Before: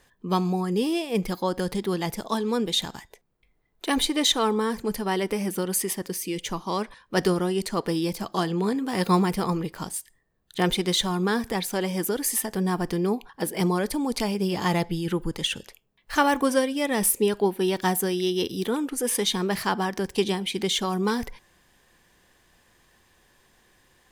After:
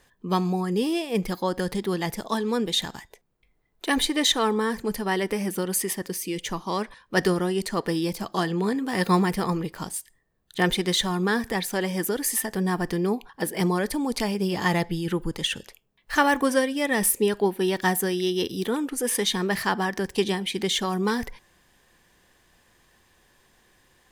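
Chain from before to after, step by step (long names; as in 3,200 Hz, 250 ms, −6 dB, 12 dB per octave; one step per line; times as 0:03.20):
dynamic equaliser 1,800 Hz, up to +7 dB, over −50 dBFS, Q 6.1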